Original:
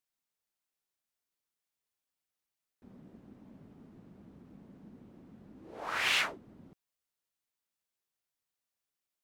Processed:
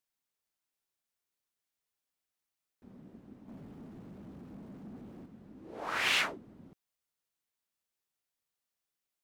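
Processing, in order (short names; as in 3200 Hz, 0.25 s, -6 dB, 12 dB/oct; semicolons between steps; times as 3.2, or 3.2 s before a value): dynamic EQ 260 Hz, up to +4 dB, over -53 dBFS, Q 0.78; 3.48–5.26 sample leveller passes 2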